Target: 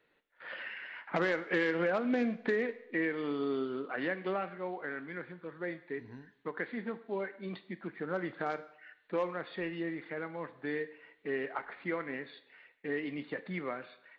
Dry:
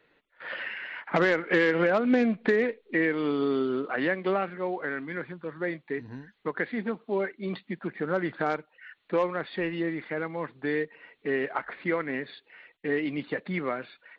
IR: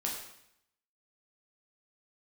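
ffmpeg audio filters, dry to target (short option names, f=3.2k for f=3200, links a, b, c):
-filter_complex "[0:a]asplit=2[a][b];[1:a]atrim=start_sample=2205,lowshelf=f=220:g=-9.5[c];[b][c]afir=irnorm=-1:irlink=0,volume=-11dB[d];[a][d]amix=inputs=2:normalize=0,volume=-9dB"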